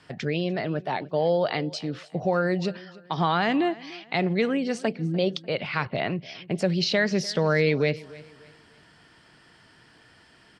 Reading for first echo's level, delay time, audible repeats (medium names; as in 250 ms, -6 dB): -20.5 dB, 296 ms, 2